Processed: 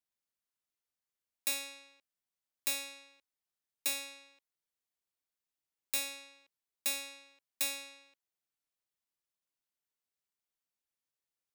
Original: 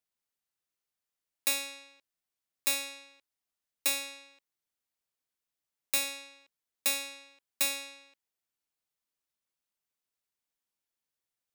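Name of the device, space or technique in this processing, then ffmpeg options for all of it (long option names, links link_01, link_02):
one-band saturation: -filter_complex "[0:a]acrossover=split=560|2300[link_01][link_02][link_03];[link_02]asoftclip=type=tanh:threshold=-37.5dB[link_04];[link_01][link_04][link_03]amix=inputs=3:normalize=0,volume=-4.5dB"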